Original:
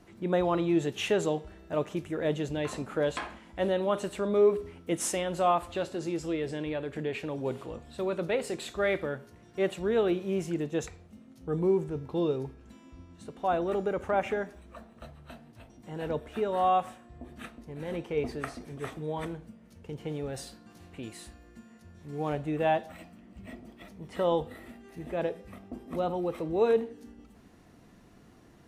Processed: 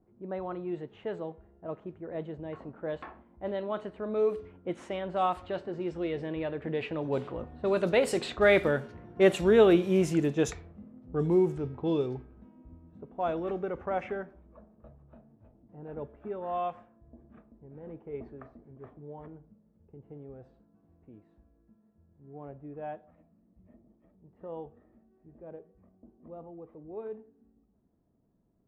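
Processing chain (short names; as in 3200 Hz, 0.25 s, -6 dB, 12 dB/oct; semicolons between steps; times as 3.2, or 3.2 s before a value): Doppler pass-by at 9.09, 16 m/s, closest 22 m; low-pass opened by the level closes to 660 Hz, open at -29.5 dBFS; gain +7 dB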